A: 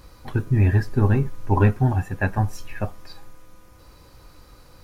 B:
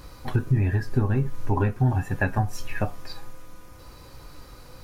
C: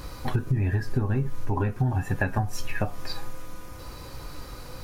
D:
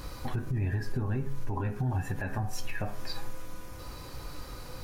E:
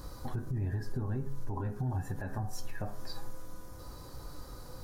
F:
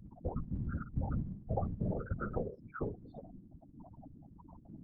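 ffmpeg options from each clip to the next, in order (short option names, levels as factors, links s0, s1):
-af "acompressor=threshold=0.0708:ratio=6,flanger=delay=6.7:depth=1.6:regen=76:speed=1.4:shape=triangular,volume=2.51"
-af "acompressor=threshold=0.0398:ratio=4,volume=1.88"
-af "bandreject=f=68.68:t=h:w=4,bandreject=f=137.36:t=h:w=4,bandreject=f=206.04:t=h:w=4,bandreject=f=274.72:t=h:w=4,bandreject=f=343.4:t=h:w=4,bandreject=f=412.08:t=h:w=4,bandreject=f=480.76:t=h:w=4,bandreject=f=549.44:t=h:w=4,bandreject=f=618.12:t=h:w=4,bandreject=f=686.8:t=h:w=4,bandreject=f=755.48:t=h:w=4,bandreject=f=824.16:t=h:w=4,bandreject=f=892.84:t=h:w=4,bandreject=f=961.52:t=h:w=4,bandreject=f=1030.2:t=h:w=4,bandreject=f=1098.88:t=h:w=4,bandreject=f=1167.56:t=h:w=4,bandreject=f=1236.24:t=h:w=4,bandreject=f=1304.92:t=h:w=4,bandreject=f=1373.6:t=h:w=4,bandreject=f=1442.28:t=h:w=4,bandreject=f=1510.96:t=h:w=4,bandreject=f=1579.64:t=h:w=4,bandreject=f=1648.32:t=h:w=4,bandreject=f=1717:t=h:w=4,bandreject=f=1785.68:t=h:w=4,bandreject=f=1854.36:t=h:w=4,bandreject=f=1923.04:t=h:w=4,bandreject=f=1991.72:t=h:w=4,bandreject=f=2060.4:t=h:w=4,bandreject=f=2129.08:t=h:w=4,bandreject=f=2197.76:t=h:w=4,bandreject=f=2266.44:t=h:w=4,bandreject=f=2335.12:t=h:w=4,bandreject=f=2403.8:t=h:w=4,bandreject=f=2472.48:t=h:w=4,bandreject=f=2541.16:t=h:w=4,alimiter=limit=0.0891:level=0:latency=1:release=63,volume=0.794"
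-af "equalizer=f=2500:w=1.6:g=-12.5,volume=0.668"
-af "afftfilt=real='re*gte(hypot(re,im),0.0126)':imag='im*gte(hypot(re,im),0.0126)':win_size=1024:overlap=0.75,highpass=f=170:t=q:w=0.5412,highpass=f=170:t=q:w=1.307,lowpass=f=2300:t=q:w=0.5176,lowpass=f=2300:t=q:w=0.7071,lowpass=f=2300:t=q:w=1.932,afreqshift=-300,afftfilt=real='hypot(re,im)*cos(2*PI*random(0))':imag='hypot(re,im)*sin(2*PI*random(1))':win_size=512:overlap=0.75,volume=3.98"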